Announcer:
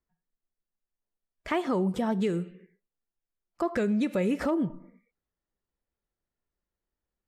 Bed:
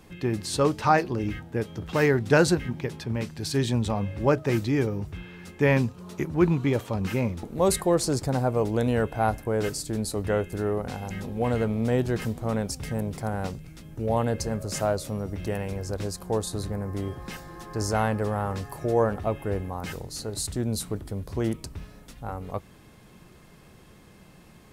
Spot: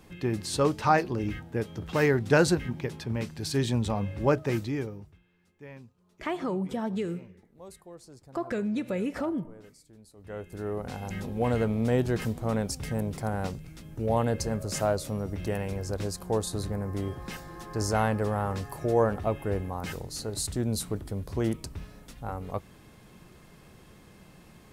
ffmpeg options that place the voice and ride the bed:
ffmpeg -i stem1.wav -i stem2.wav -filter_complex "[0:a]adelay=4750,volume=-3.5dB[link_01];[1:a]volume=22dB,afade=type=out:start_time=4.36:duration=0.83:silence=0.0707946,afade=type=in:start_time=10.17:duration=1:silence=0.0630957[link_02];[link_01][link_02]amix=inputs=2:normalize=0" out.wav

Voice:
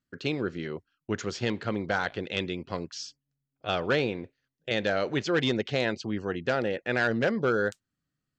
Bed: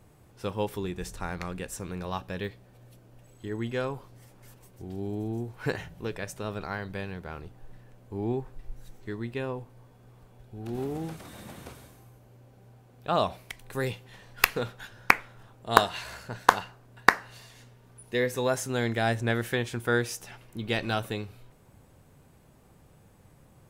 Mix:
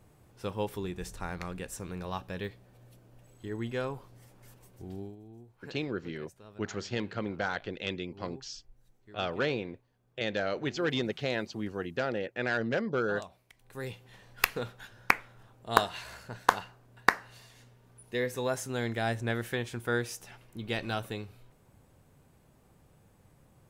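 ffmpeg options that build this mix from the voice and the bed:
ffmpeg -i stem1.wav -i stem2.wav -filter_complex "[0:a]adelay=5500,volume=-4.5dB[link_01];[1:a]volume=10.5dB,afade=type=out:start_time=4.93:duration=0.23:silence=0.177828,afade=type=in:start_time=13.52:duration=0.59:silence=0.211349[link_02];[link_01][link_02]amix=inputs=2:normalize=0" out.wav

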